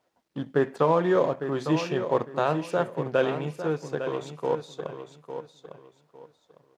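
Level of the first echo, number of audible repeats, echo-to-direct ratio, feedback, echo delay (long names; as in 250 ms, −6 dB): −9.5 dB, 3, −9.0 dB, 25%, 854 ms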